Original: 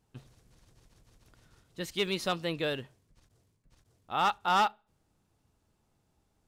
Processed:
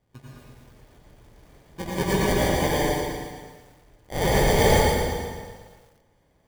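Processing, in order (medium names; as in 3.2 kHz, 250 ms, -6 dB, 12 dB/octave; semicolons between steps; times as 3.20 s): treble shelf 4 kHz +8 dB; sample-and-hold 33×; plate-style reverb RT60 1.6 s, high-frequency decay 0.9×, pre-delay 75 ms, DRR -6 dB; bit-crushed delay 115 ms, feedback 55%, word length 9-bit, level -7 dB; trim +1.5 dB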